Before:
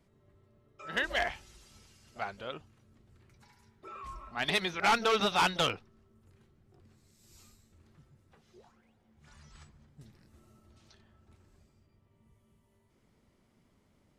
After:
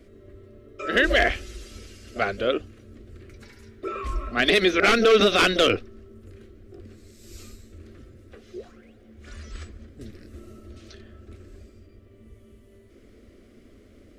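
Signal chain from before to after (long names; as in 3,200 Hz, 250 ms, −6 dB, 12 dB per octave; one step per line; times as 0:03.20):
high-shelf EQ 2,500 Hz −11.5 dB
phaser with its sweep stopped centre 370 Hz, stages 4
boost into a limiter +29 dB
level −7.5 dB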